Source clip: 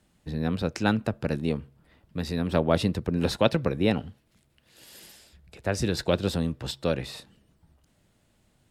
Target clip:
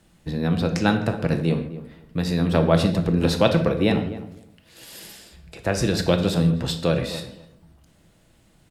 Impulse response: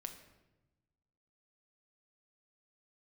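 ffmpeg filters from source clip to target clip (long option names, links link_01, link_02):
-filter_complex "[0:a]asplit=2[link_01][link_02];[link_02]acompressor=threshold=-33dB:ratio=6,volume=-2.5dB[link_03];[link_01][link_03]amix=inputs=2:normalize=0,asplit=2[link_04][link_05];[link_05]adelay=256,lowpass=frequency=1100:poles=1,volume=-13dB,asplit=2[link_06][link_07];[link_07]adelay=256,lowpass=frequency=1100:poles=1,volume=0.17[link_08];[link_04][link_06][link_08]amix=inputs=3:normalize=0[link_09];[1:a]atrim=start_sample=2205,afade=type=out:start_time=0.22:duration=0.01,atrim=end_sample=10143[link_10];[link_09][link_10]afir=irnorm=-1:irlink=0,volume=6.5dB"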